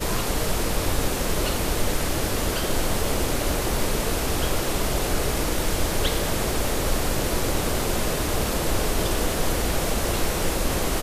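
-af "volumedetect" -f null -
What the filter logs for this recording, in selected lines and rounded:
mean_volume: -22.7 dB
max_volume: -9.5 dB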